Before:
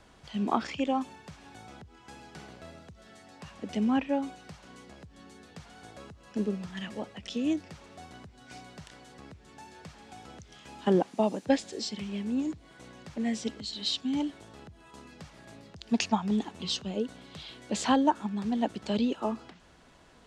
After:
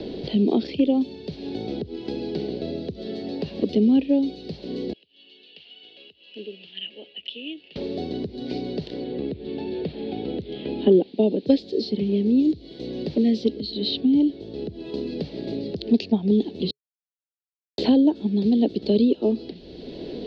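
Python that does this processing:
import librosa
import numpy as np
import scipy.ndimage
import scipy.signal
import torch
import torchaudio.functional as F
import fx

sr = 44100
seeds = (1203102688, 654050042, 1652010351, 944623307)

y = fx.bandpass_q(x, sr, hz=2900.0, q=11.0, at=(4.93, 7.76))
y = fx.lowpass(y, sr, hz=3500.0, slope=24, at=(9.04, 11.46))
y = fx.edit(y, sr, fx.silence(start_s=16.71, length_s=1.07), tone=tone)
y = fx.curve_eq(y, sr, hz=(140.0, 420.0, 1200.0, 4300.0, 7400.0), db=(0, 11, -25, 6, -29))
y = fx.band_squash(y, sr, depth_pct=70)
y = F.gain(torch.from_numpy(y), 5.5).numpy()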